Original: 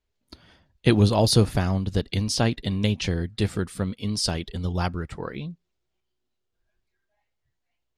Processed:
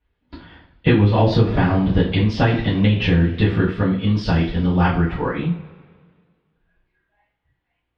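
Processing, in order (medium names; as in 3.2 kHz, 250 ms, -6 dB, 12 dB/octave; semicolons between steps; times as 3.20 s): two-slope reverb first 0.34 s, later 1.8 s, from -21 dB, DRR -8.5 dB; compression 6:1, threshold -13 dBFS, peak gain reduction 9.5 dB; low-pass 3 kHz 24 dB/octave; trim +2 dB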